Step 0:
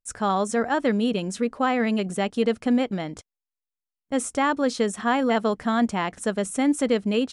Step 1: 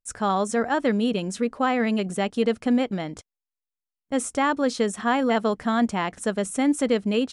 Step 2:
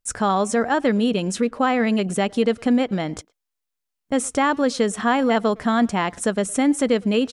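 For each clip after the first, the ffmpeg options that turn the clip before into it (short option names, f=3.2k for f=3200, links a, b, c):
-af anull
-filter_complex "[0:a]asplit=2[a][b];[b]acompressor=threshold=-30dB:ratio=6,volume=3dB[c];[a][c]amix=inputs=2:normalize=0,asplit=2[d][e];[e]adelay=110,highpass=300,lowpass=3.4k,asoftclip=type=hard:threshold=-17.5dB,volume=-24dB[f];[d][f]amix=inputs=2:normalize=0"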